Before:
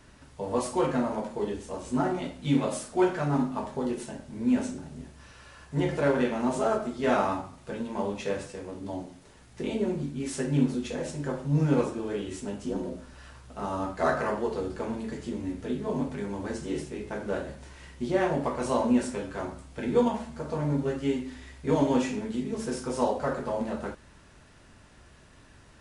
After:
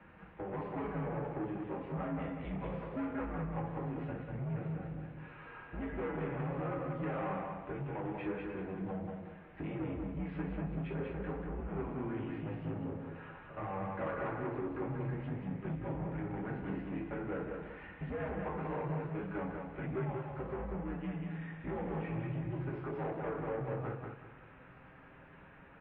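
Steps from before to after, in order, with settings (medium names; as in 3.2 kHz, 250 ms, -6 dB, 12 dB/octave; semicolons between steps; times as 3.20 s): compression 2.5:1, threshold -36 dBFS, peak gain reduction 12 dB; flange 0.11 Hz, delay 6.8 ms, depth 2.6 ms, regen -35%; valve stage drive 39 dB, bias 0.35; mistuned SSB -92 Hz 160–2600 Hz; feedback delay 190 ms, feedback 30%, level -4 dB; trim +5.5 dB; MP3 32 kbps 12 kHz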